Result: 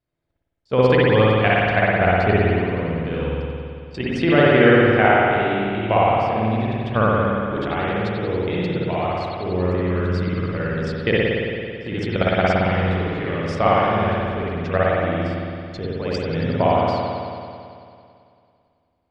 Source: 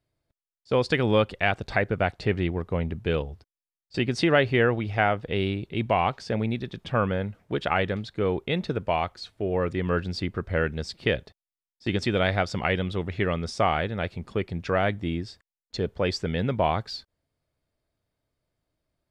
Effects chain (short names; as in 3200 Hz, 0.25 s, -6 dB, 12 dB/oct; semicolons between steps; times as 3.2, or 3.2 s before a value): high shelf 5200 Hz -8 dB; level quantiser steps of 11 dB; spring tank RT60 2.4 s, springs 55 ms, chirp 40 ms, DRR -7 dB; gain +4 dB